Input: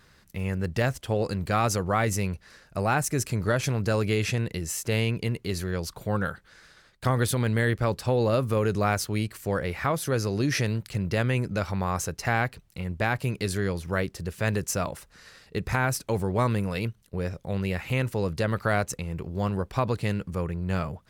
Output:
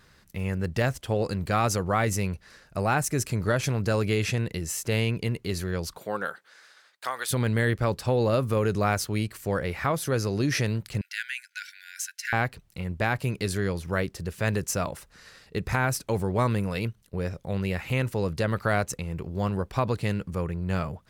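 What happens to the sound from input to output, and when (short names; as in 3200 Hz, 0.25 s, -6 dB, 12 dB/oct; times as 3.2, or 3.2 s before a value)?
5.96–7.3 HPF 270 Hz -> 1100 Hz
11.01–12.33 brick-wall FIR high-pass 1400 Hz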